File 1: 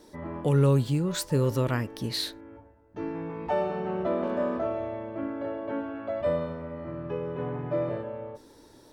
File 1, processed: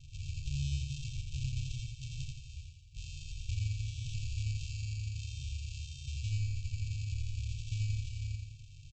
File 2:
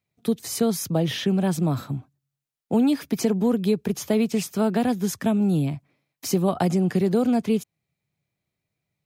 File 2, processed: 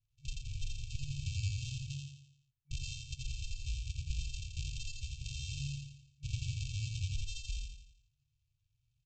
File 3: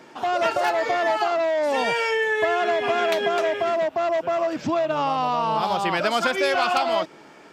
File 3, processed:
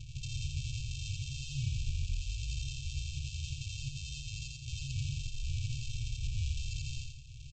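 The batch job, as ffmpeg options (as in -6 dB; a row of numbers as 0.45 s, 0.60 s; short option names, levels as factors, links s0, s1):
-af "equalizer=f=160:w=1:g=-6,acompressor=threshold=0.00708:ratio=3,aresample=16000,acrusher=samples=33:mix=1:aa=0.000001,aresample=44100,afftfilt=real='re*(1-between(b*sr/4096,150,2300))':imag='im*(1-between(b*sr/4096,150,2300))':win_size=4096:overlap=0.75,aecho=1:1:85|170|255|340|425|510:0.708|0.333|0.156|0.0735|0.0345|0.0162,volume=1.78"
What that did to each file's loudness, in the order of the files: -9.5 LU, -18.0 LU, -16.5 LU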